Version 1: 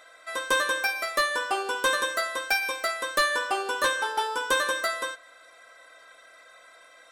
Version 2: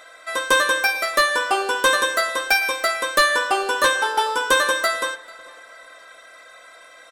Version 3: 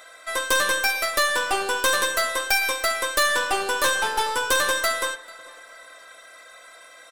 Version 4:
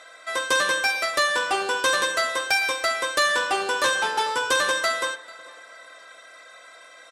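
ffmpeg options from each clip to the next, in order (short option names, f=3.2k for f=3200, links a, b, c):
-filter_complex "[0:a]asplit=2[a][b];[b]adelay=442,lowpass=f=4.6k:p=1,volume=-21.5dB,asplit=2[c][d];[d]adelay=442,lowpass=f=4.6k:p=1,volume=0.4,asplit=2[e][f];[f]adelay=442,lowpass=f=4.6k:p=1,volume=0.4[g];[a][c][e][g]amix=inputs=4:normalize=0,volume=7dB"
-af "aeval=exprs='(tanh(7.08*val(0)+0.5)-tanh(0.5))/7.08':c=same,highshelf=f=6.1k:g=7.5"
-af "highpass=110,lowpass=7.7k"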